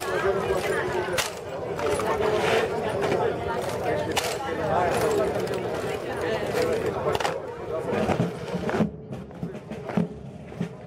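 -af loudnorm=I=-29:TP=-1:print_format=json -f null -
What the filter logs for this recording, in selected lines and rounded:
"input_i" : "-27.1",
"input_tp" : "-7.9",
"input_lra" : "4.2",
"input_thresh" : "-37.3",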